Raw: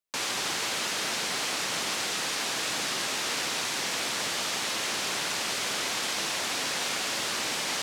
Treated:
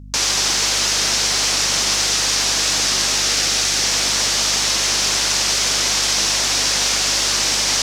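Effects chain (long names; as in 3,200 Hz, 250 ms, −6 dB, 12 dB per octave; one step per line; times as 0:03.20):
mains hum 50 Hz, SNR 13 dB
parametric band 5,700 Hz +10.5 dB 0.99 octaves
0:03.21–0:03.84: notch filter 1,000 Hz, Q 6.3
level +7 dB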